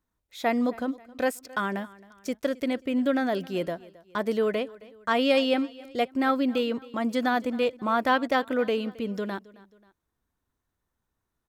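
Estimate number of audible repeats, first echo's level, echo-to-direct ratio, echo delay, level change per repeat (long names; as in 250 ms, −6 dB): 2, −21.0 dB, −20.0 dB, 268 ms, −7.0 dB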